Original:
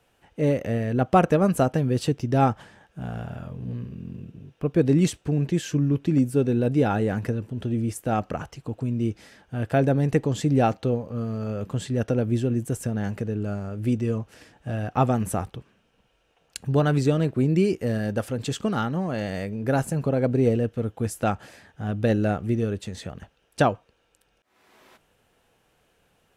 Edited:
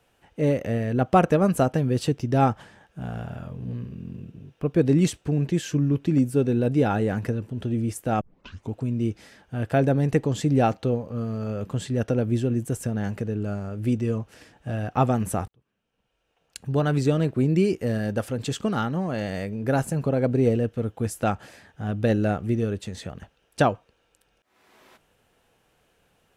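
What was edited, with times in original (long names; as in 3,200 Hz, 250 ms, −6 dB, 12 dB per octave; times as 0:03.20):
0:08.21: tape start 0.52 s
0:15.48–0:17.15: fade in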